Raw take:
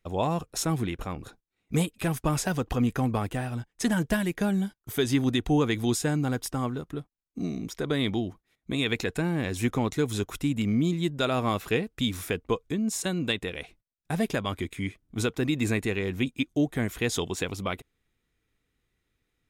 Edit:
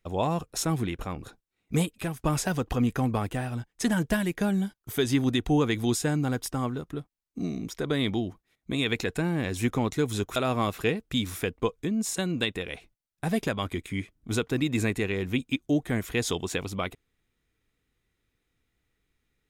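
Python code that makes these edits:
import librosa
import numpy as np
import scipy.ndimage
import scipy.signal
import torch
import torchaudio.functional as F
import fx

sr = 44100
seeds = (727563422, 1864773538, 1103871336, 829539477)

y = fx.edit(x, sr, fx.fade_out_to(start_s=1.94, length_s=0.25, floor_db=-10.5),
    fx.cut(start_s=10.36, length_s=0.87), tone=tone)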